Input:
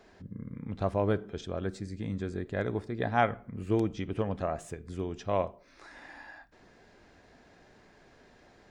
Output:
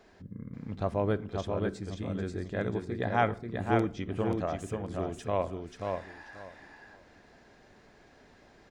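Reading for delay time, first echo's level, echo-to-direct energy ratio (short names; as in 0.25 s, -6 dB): 0.535 s, -4.0 dB, -4.0 dB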